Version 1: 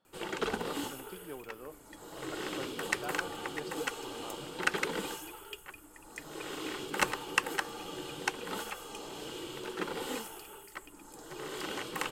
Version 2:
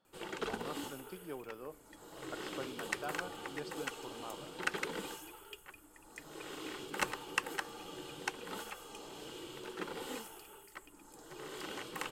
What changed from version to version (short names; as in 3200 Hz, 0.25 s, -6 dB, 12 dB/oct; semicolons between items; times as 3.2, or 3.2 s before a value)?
background -5.5 dB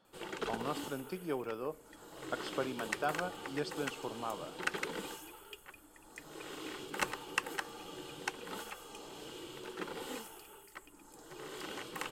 speech +6.0 dB; reverb: on, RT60 0.85 s